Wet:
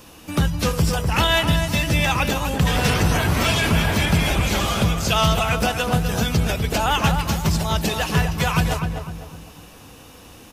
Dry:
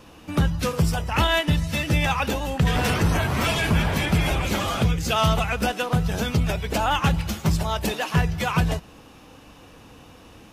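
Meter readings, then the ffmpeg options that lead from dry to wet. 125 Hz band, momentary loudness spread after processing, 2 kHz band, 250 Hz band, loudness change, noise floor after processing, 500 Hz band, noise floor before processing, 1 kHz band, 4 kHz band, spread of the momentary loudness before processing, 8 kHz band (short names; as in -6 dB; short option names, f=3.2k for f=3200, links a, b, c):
+2.5 dB, 5 LU, +3.5 dB, +2.5 dB, +3.0 dB, -44 dBFS, +2.5 dB, -48 dBFS, +2.5 dB, +5.0 dB, 4 LU, +6.0 dB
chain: -filter_complex "[0:a]acrossover=split=6700[a][b];[b]acompressor=threshold=-46dB:ratio=4:attack=1:release=60[c];[a][c]amix=inputs=2:normalize=0,asplit=2[d][e];[e]adelay=251,lowpass=f=1.6k:p=1,volume=-5dB,asplit=2[f][g];[g]adelay=251,lowpass=f=1.6k:p=1,volume=0.42,asplit=2[h][i];[i]adelay=251,lowpass=f=1.6k:p=1,volume=0.42,asplit=2[j][k];[k]adelay=251,lowpass=f=1.6k:p=1,volume=0.42,asplit=2[l][m];[m]adelay=251,lowpass=f=1.6k:p=1,volume=0.42[n];[d][f][h][j][l][n]amix=inputs=6:normalize=0,crystalizer=i=2:c=0,volume=1dB"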